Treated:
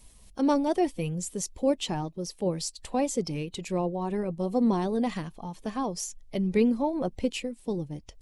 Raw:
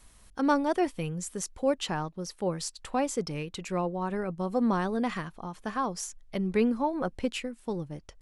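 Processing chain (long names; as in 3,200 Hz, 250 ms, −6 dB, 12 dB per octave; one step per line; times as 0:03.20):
spectral magnitudes quantised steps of 15 dB
parametric band 1,400 Hz −12 dB 0.92 octaves
level +3 dB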